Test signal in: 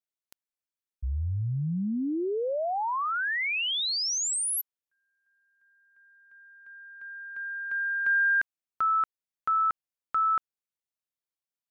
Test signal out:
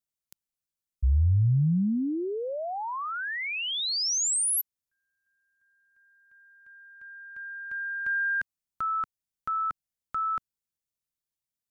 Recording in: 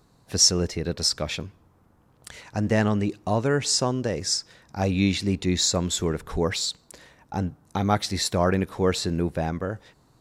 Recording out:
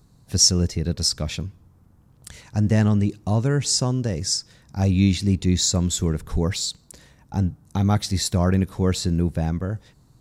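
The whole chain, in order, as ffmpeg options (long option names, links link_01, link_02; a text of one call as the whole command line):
ffmpeg -i in.wav -af "bass=frequency=250:gain=12,treble=frequency=4000:gain=7,volume=-4dB" out.wav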